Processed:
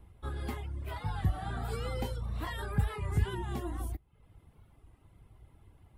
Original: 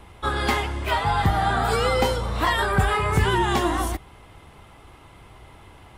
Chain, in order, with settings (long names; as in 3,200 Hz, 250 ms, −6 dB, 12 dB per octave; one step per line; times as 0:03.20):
drawn EQ curve 110 Hz 0 dB, 960 Hz −14 dB, 6,300 Hz −16 dB, 12,000 Hz −6 dB
convolution reverb, pre-delay 3 ms, DRR 19.5 dB
reverb reduction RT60 0.59 s
0:00.96–0:03.35: parametric band 3,700 Hz +4.5 dB 2.9 octaves
wow of a warped record 33 1/3 rpm, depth 100 cents
level −6.5 dB